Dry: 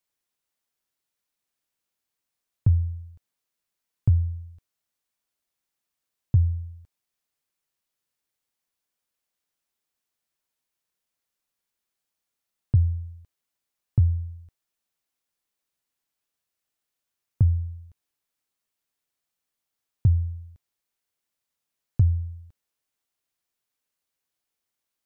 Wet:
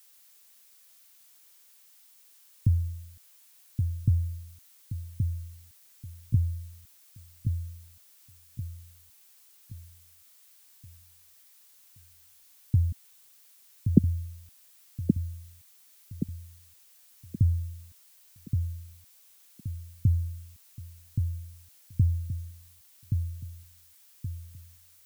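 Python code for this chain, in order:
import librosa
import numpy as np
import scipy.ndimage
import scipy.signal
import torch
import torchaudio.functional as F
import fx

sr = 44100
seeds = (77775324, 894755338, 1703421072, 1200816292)

y = fx.sine_speech(x, sr, at=(12.92, 14.04))
y = fx.ladder_lowpass(y, sr, hz=310.0, resonance_pct=45)
y = fx.echo_feedback(y, sr, ms=1124, feedback_pct=41, wet_db=-5.0)
y = fx.dmg_noise_colour(y, sr, seeds[0], colour='blue', level_db=-62.0)
y = y * librosa.db_to_amplitude(4.0)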